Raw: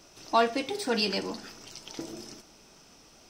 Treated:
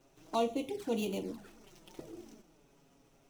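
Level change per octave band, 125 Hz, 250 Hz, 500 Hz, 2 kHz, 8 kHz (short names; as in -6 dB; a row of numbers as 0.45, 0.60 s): -3.5, -3.5, -5.5, -15.0, -10.0 dB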